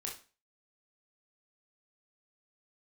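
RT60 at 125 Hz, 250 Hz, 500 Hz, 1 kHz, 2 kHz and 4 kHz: 0.35, 0.40, 0.35, 0.35, 0.35, 0.30 seconds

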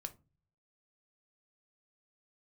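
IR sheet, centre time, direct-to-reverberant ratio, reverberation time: 4 ms, 7.0 dB, 0.30 s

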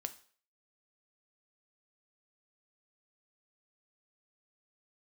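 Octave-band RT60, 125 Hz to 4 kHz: 0.40, 0.40, 0.50, 0.45, 0.45, 0.45 seconds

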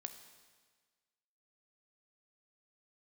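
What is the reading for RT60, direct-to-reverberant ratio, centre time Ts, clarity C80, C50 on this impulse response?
1.5 s, 7.5 dB, 17 ms, 11.0 dB, 10.0 dB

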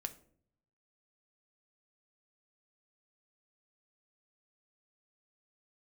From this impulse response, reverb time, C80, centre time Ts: 0.60 s, 19.5 dB, 5 ms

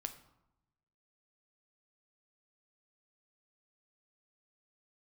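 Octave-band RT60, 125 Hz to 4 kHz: 1.3, 1.1, 0.85, 0.90, 0.65, 0.50 seconds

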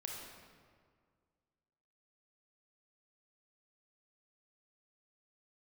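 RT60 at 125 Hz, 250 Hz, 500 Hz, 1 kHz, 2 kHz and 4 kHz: 2.1, 2.1, 2.0, 1.9, 1.5, 1.2 seconds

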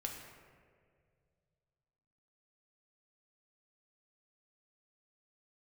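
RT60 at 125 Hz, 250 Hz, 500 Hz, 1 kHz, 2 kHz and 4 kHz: 3.2, 2.3, 2.5, 1.7, 1.7, 1.0 seconds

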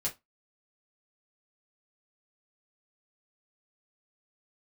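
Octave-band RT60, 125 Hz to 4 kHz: 0.20, 0.20, 0.15, 0.20, 0.15, 0.15 seconds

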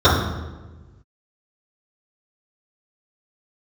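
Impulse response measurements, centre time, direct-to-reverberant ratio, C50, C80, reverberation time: 58 ms, −14.0 dB, 2.5 dB, 5.0 dB, 1.2 s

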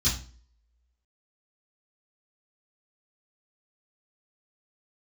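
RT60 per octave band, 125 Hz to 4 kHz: 0.45, 0.50, 0.45, 0.40, 0.35, 0.35 seconds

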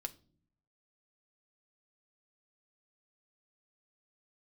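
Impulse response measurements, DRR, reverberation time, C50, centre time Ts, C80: 5.0 dB, non-exponential decay, 20.0 dB, 4 ms, 25.0 dB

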